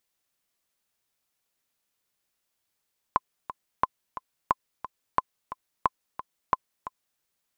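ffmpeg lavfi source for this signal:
-f lavfi -i "aevalsrc='pow(10,(-7.5-13.5*gte(mod(t,2*60/178),60/178))/20)*sin(2*PI*1030*mod(t,60/178))*exp(-6.91*mod(t,60/178)/0.03)':d=4.04:s=44100"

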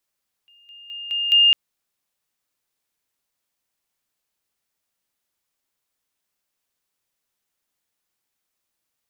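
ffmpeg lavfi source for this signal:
-f lavfi -i "aevalsrc='pow(10,(-51+10*floor(t/0.21))/20)*sin(2*PI*2820*t)':d=1.05:s=44100"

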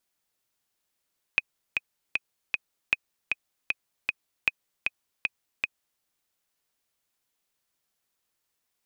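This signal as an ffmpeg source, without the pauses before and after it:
-f lavfi -i "aevalsrc='pow(10,(-8-4*gte(mod(t,4*60/155),60/155))/20)*sin(2*PI*2510*mod(t,60/155))*exp(-6.91*mod(t,60/155)/0.03)':d=4.64:s=44100"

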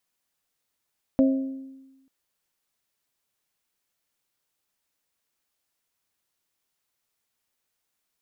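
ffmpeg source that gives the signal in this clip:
-f lavfi -i "aevalsrc='0.188*pow(10,-3*t/1.15)*sin(2*PI*267*t)+0.0841*pow(10,-3*t/0.708)*sin(2*PI*534*t)+0.0376*pow(10,-3*t/0.623)*sin(2*PI*640.8*t)':d=0.89:s=44100"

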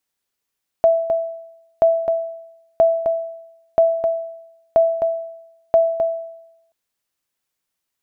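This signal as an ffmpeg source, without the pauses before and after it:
-f lavfi -i "aevalsrc='0.447*(sin(2*PI*661*mod(t,0.98))*exp(-6.91*mod(t,0.98)/0.85)+0.447*sin(2*PI*661*max(mod(t,0.98)-0.26,0))*exp(-6.91*max(mod(t,0.98)-0.26,0)/0.85))':d=5.88:s=44100"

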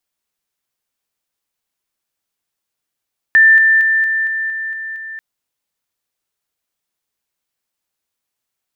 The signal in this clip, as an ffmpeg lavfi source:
-f lavfi -i "aevalsrc='pow(10,(-5-3*floor(t/0.23))/20)*sin(2*PI*1780*t)':d=1.84:s=44100"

